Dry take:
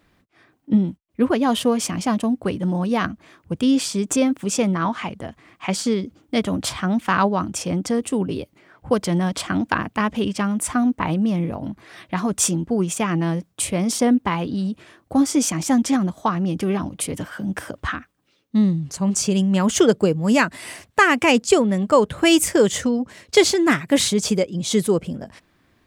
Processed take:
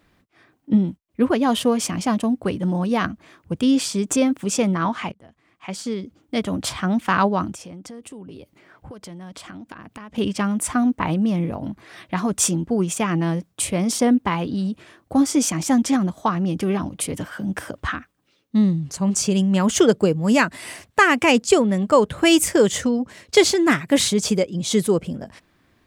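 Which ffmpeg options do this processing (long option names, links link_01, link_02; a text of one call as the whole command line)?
ffmpeg -i in.wav -filter_complex "[0:a]asettb=1/sr,asplit=3[link_01][link_02][link_03];[link_01]atrim=end=7.534[link_04];[link_02]atrim=start=7.53:end=10.18,asetpts=PTS-STARTPTS,afade=type=in:duration=0.004:curve=qsin,afade=type=out:start_time=2.646:duration=0.004:curve=qsin,acompressor=threshold=-35dB:ratio=10:attack=3.2:release=140:knee=1:detection=peak[link_05];[link_03]atrim=start=10.176[link_06];[link_04][link_05]acrossfade=duration=0.004:curve1=hsin:curve2=qsin[link_07];[link_07][link_06]acrossfade=duration=0.004:curve1=qsin:curve2=hsin,asplit=2[link_08][link_09];[link_08]atrim=end=5.12,asetpts=PTS-STARTPTS,afade=type=out:start_time=5.116:duration=0.004:curve=hsin:silence=0.0891251[link_10];[link_09]atrim=start=5.12,asetpts=PTS-STARTPTS,afade=type=in:duration=1.73:silence=0.0891251[link_11];[link_10][link_11]concat=n=2:v=0:a=1" out.wav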